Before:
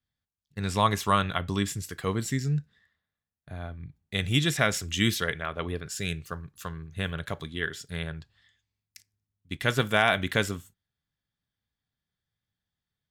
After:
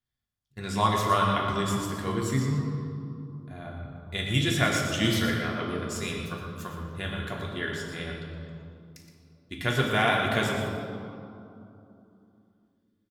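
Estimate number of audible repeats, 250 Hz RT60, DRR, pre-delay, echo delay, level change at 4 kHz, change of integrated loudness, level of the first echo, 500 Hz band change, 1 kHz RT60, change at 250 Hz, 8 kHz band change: 1, 3.8 s, −2.5 dB, 3 ms, 118 ms, 0.0 dB, 0.0 dB, −8.0 dB, +1.0 dB, 2.7 s, +2.0 dB, −1.5 dB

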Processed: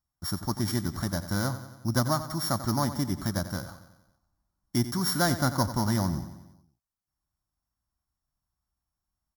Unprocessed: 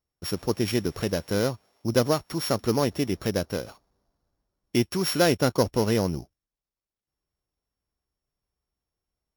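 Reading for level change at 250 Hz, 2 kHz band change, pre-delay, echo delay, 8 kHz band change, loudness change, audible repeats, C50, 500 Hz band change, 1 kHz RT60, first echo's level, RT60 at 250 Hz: −2.5 dB, −2.0 dB, no reverb audible, 91 ms, +0.5 dB, −3.0 dB, 5, no reverb audible, −10.0 dB, no reverb audible, −12.5 dB, no reverb audible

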